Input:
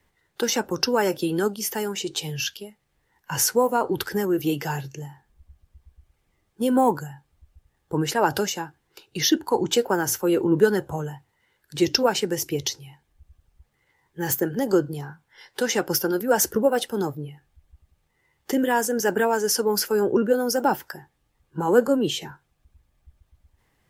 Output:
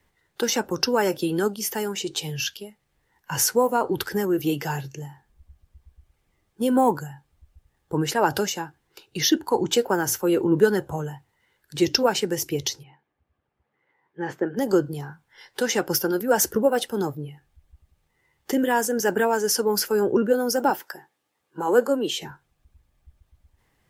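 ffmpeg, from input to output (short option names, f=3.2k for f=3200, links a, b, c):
-filter_complex "[0:a]asplit=3[a][b][c];[a]afade=t=out:st=12.82:d=0.02[d];[b]highpass=220,lowpass=2k,afade=t=in:st=12.82:d=0.02,afade=t=out:st=14.56:d=0.02[e];[c]afade=t=in:st=14.56:d=0.02[f];[d][e][f]amix=inputs=3:normalize=0,asettb=1/sr,asplit=3[g][h][i];[g]atrim=end=20.704[j];[h]atrim=start=20.7:end=22.2,asetpts=PTS-STARTPTS,afade=t=in:d=0.004:c=qsin,afade=t=out:st=1.496:d=0.004:c=qsin,highpass=300[k];[i]atrim=start=22.196[l];[j][k]acrossfade=d=0.004:c1=hsin:c2=qsin[m];[m][l]acrossfade=d=0.004:c1=qsin:c2=hsin"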